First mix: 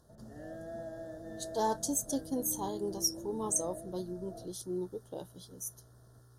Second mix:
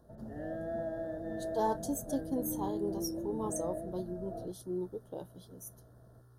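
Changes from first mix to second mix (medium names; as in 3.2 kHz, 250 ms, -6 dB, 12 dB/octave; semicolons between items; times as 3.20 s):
background +6.0 dB; master: add peaking EQ 6.4 kHz -11.5 dB 1.8 oct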